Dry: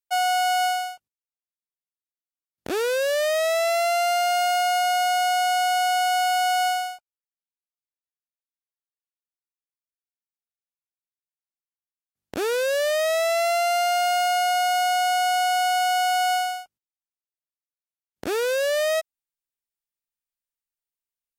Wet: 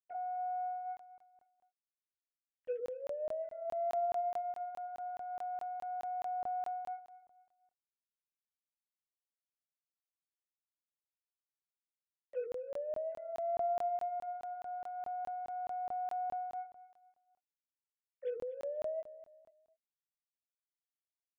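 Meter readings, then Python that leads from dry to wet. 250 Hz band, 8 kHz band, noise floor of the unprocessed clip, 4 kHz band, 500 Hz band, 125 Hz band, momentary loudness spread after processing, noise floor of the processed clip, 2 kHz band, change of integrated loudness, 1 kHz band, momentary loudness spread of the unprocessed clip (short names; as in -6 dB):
under -20 dB, under -40 dB, under -85 dBFS, under -40 dB, -14.5 dB, n/a, 10 LU, under -85 dBFS, -34.0 dB, -17.5 dB, -16.0 dB, 7 LU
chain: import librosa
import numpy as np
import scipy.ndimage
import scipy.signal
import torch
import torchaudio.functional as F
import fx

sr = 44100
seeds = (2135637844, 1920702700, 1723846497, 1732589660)

y = fx.sine_speech(x, sr)
y = fx.low_shelf_res(y, sr, hz=610.0, db=8.5, q=3.0)
y = fx.hum_notches(y, sr, base_hz=60, count=8)
y = fx.env_lowpass_down(y, sr, base_hz=320.0, full_db=-26.0)
y = fx.over_compress(y, sr, threshold_db=-37.0, ratio=-1.0)
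y = fx.doubler(y, sr, ms=16.0, db=-5.5)
y = fx.echo_feedback(y, sr, ms=244, feedback_pct=33, wet_db=-15)
y = fx.buffer_crackle(y, sr, first_s=0.97, period_s=0.21, block=1024, kind='zero')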